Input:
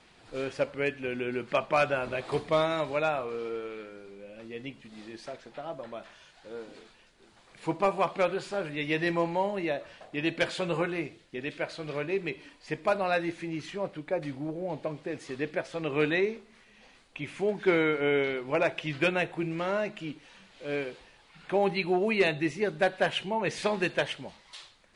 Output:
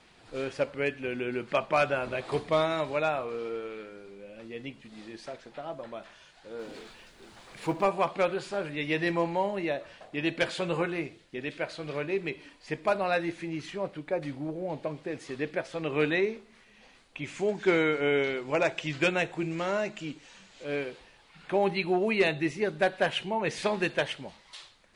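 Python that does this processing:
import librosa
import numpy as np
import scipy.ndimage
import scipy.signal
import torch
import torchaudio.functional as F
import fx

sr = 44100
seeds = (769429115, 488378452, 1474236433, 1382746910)

y = fx.law_mismatch(x, sr, coded='mu', at=(6.59, 7.83))
y = fx.lowpass_res(y, sr, hz=7300.0, q=2.8, at=(17.24, 20.64))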